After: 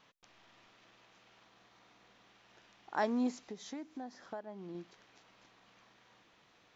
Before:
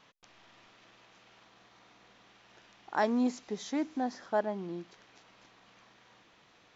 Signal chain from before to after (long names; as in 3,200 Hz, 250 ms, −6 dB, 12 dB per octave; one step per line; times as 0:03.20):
0:03.37–0:04.75: downward compressor 5 to 1, threshold −38 dBFS, peak gain reduction 13 dB
level −4 dB